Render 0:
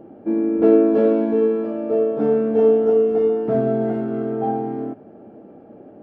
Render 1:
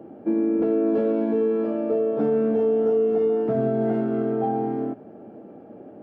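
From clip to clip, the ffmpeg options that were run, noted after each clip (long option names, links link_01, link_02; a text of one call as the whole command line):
ffmpeg -i in.wav -filter_complex "[0:a]highpass=85,acrossover=split=140[link_01][link_02];[link_02]alimiter=limit=-15dB:level=0:latency=1:release=139[link_03];[link_01][link_03]amix=inputs=2:normalize=0" out.wav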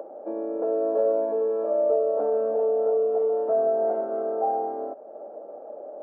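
ffmpeg -i in.wav -af "acompressor=mode=upward:threshold=-33dB:ratio=2.5,highpass=frequency=570:width_type=q:width=4.9,highshelf=frequency=1600:width_type=q:width=1.5:gain=-9.5,volume=-6dB" out.wav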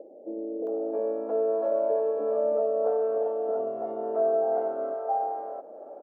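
ffmpeg -i in.wav -filter_complex "[0:a]acrossover=split=160|510[link_01][link_02][link_03];[link_01]adelay=100[link_04];[link_03]adelay=670[link_05];[link_04][link_02][link_05]amix=inputs=3:normalize=0" out.wav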